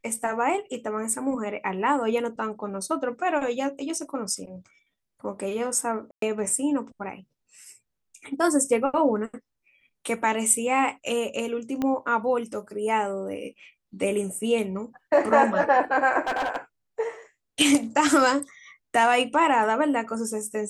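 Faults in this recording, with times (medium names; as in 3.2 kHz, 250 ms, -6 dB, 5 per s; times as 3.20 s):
6.11–6.22 s: dropout 113 ms
11.82 s: pop -15 dBFS
16.27–16.57 s: clipped -22 dBFS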